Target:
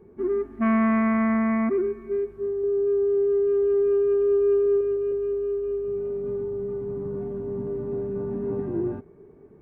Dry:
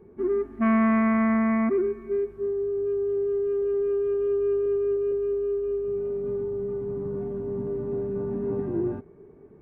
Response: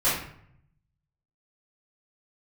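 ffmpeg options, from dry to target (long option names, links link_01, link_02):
-filter_complex "[0:a]asettb=1/sr,asplit=3[link_01][link_02][link_03];[link_01]atrim=end=2.624[link_04];[link_02]atrim=start=2.62:end=4.81,asetpts=PTS-STARTPTS,afade=type=in:duration=0.004:curve=qsin,afade=type=out:start_time=2.186:duration=0.004:curve=qsin,asplit=2[link_05][link_06];[link_06]adelay=15,volume=-4.5dB[link_07];[link_05][link_07]amix=inputs=2:normalize=0,atrim=end_sample=96579[link_08];[link_03]atrim=start=4.806[link_09];[link_04][link_08]acrossfade=duration=0.004:curve1=hsin:curve2=qsin[link_10];[link_10][link_09]acrossfade=duration=0.004:curve1=qsin:curve2=hsin"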